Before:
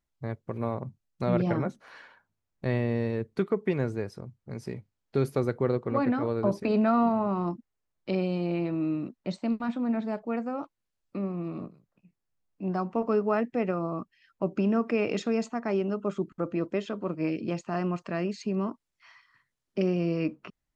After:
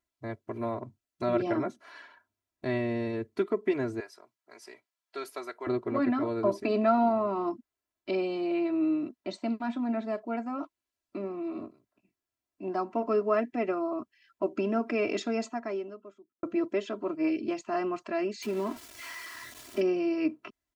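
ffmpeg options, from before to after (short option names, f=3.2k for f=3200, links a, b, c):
-filter_complex "[0:a]asettb=1/sr,asplit=3[a][b][c];[a]atrim=end=4.004[d];[b]atrim=start=4:end=5.67,asetpts=PTS-STARTPTS,afade=t=in:d=0.004:c=qsin,afade=t=out:st=1.666:d=0.004:c=qsin,highpass=800[e];[c]atrim=start=5.666[f];[d][e]acrossfade=d=0.004:c1=hsin:c2=qsin[g];[g][f]acrossfade=d=0.004:c1=qsin:c2=hsin,asettb=1/sr,asplit=3[h][i][j];[h]atrim=end=18.424[k];[i]atrim=start=18.42:end=19.81,asetpts=PTS-STARTPTS,afade=t=in:d=0.004:c=qsin,afade=t=out:st=1.386:d=0.004:c=qsin,aeval=exprs='val(0)+0.5*0.0126*sgn(val(0))':c=same[l];[j]atrim=start=19.806[m];[k][l]acrossfade=d=0.004:c1=hsin:c2=qsin[n];[n][m]acrossfade=d=0.004:c1=qsin:c2=hsin,asplit=2[o][p];[o]atrim=end=16.43,asetpts=PTS-STARTPTS,afade=t=out:st=15.45:d=0.98:c=qua[q];[p]atrim=start=16.43,asetpts=PTS-STARTPTS,afade=t=in:d=0.004:c=hsin[r];[q][r]concat=n=2:v=0:a=1,highpass=f=150:p=1,aecho=1:1:3:0.97,volume=-2.5dB"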